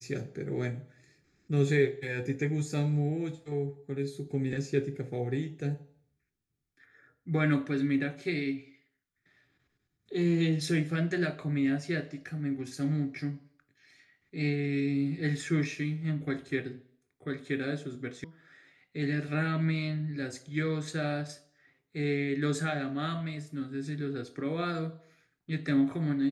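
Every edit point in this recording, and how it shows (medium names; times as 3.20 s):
18.24 s: sound stops dead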